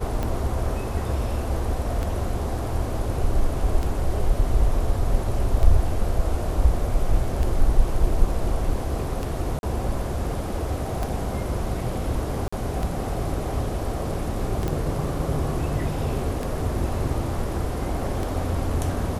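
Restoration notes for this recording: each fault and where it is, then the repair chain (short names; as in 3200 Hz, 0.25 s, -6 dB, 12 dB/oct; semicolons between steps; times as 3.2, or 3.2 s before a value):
tick 33 1/3 rpm -15 dBFS
9.59–9.63 gap 41 ms
12.48–12.53 gap 45 ms
14.68 pop -14 dBFS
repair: de-click; interpolate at 9.59, 41 ms; interpolate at 12.48, 45 ms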